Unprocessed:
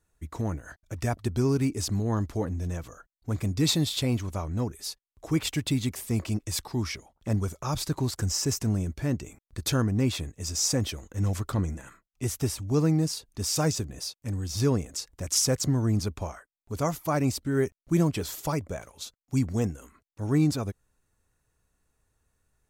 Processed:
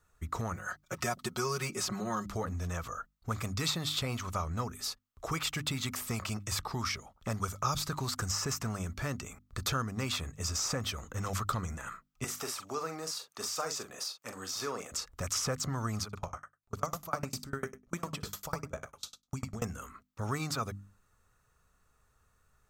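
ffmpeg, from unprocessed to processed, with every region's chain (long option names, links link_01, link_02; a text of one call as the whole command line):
ffmpeg -i in.wav -filter_complex "[0:a]asettb=1/sr,asplit=3[link_01][link_02][link_03];[link_01]atrim=end=0.544[link_04];[link_02]atrim=start=0.54:end=2.26,asetpts=PTS-STARTPTS,afade=type=in:duration=0.004:curve=qsin,afade=type=out:start_time=1.716:duration=0.004:curve=qsin,highpass=frequency=240:poles=1,aecho=1:1:5.5:0.94,atrim=end_sample=75852[link_05];[link_03]atrim=start=2.256[link_06];[link_04][link_05]acrossfade=duration=0.004:curve1=hsin:curve2=qsin[link_07];[link_07][link_06]acrossfade=duration=0.004:curve1=qsin:curve2=hsin,asettb=1/sr,asplit=3[link_08][link_09][link_10];[link_08]atrim=end=12.244[link_11];[link_09]atrim=start=12.24:end=14.92,asetpts=PTS-STARTPTS,afade=type=in:duration=0.004:curve=qsin,afade=type=out:start_time=2.676:duration=0.004:curve=qsin,highpass=480,acompressor=threshold=-36dB:ratio=2.5:attack=3.2:release=140:knee=1:detection=peak,asplit=2[link_12][link_13];[link_13]adelay=42,volume=-9dB[link_14];[link_12][link_14]amix=inputs=2:normalize=0,atrim=end_sample=118188[link_15];[link_10]atrim=start=14.916[link_16];[link_11][link_15]acrossfade=duration=0.004:curve1=hsin:curve2=qsin[link_17];[link_17][link_16]acrossfade=duration=0.004:curve1=qsin:curve2=hsin,asettb=1/sr,asplit=3[link_18][link_19][link_20];[link_18]atrim=end=16.034[link_21];[link_19]atrim=start=16.03:end=19.62,asetpts=PTS-STARTPTS,afade=type=in:duration=0.004:curve=qsin,afade=type=out:start_time=3.586:duration=0.004:curve=qsin,aecho=1:1:63|126|189:0.501|0.0802|0.0128,atrim=end_sample=158319,aeval=exprs='val(0)*pow(10,-33*if(lt(mod(10*n/s,1),2*abs(10)/1000),1-mod(10*n/s,1)/(2*abs(10)/1000),(mod(10*n/s,1)-2*abs(10)/1000)/(1-2*abs(10)/1000))/20)':channel_layout=same[link_22];[link_20]atrim=start=19.616[link_23];[link_21][link_22]acrossfade=duration=0.004:curve1=hsin:curve2=qsin[link_24];[link_24][link_23]acrossfade=duration=0.004:curve1=qsin:curve2=hsin,bandreject=frequency=50:width_type=h:width=6,bandreject=frequency=100:width_type=h:width=6,bandreject=frequency=150:width_type=h:width=6,bandreject=frequency=200:width_type=h:width=6,bandreject=frequency=250:width_type=h:width=6,bandreject=frequency=300:width_type=h:width=6,acrossover=split=660|2800[link_25][link_26][link_27];[link_25]acompressor=threshold=-38dB:ratio=4[link_28];[link_26]acompressor=threshold=-43dB:ratio=4[link_29];[link_27]acompressor=threshold=-37dB:ratio=4[link_30];[link_28][link_29][link_30]amix=inputs=3:normalize=0,equalizer=frequency=315:width_type=o:width=0.33:gain=-8,equalizer=frequency=1250:width_type=o:width=0.33:gain=12,equalizer=frequency=10000:width_type=o:width=0.33:gain=-6,volume=3dB" out.wav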